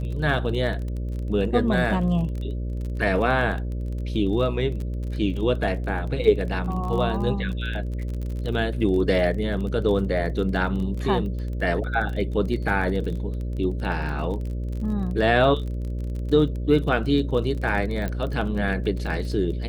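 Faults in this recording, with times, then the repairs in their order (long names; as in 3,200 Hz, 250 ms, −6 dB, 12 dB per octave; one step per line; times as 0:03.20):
mains buzz 60 Hz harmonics 10 −28 dBFS
surface crackle 27 per second −31 dBFS
0:18.08: click −16 dBFS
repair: click removal
hum removal 60 Hz, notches 10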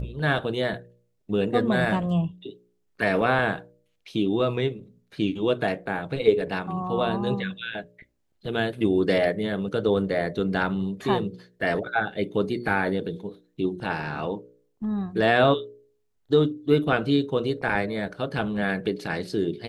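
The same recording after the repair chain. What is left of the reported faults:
none of them is left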